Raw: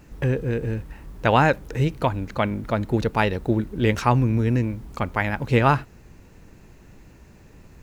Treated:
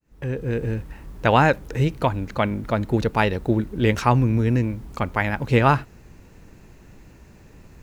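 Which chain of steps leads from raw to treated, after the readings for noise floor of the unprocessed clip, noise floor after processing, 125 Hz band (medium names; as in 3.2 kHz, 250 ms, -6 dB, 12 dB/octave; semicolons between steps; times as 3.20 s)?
-49 dBFS, -49 dBFS, +0.5 dB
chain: fade-in on the opening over 0.58 s; trim +1 dB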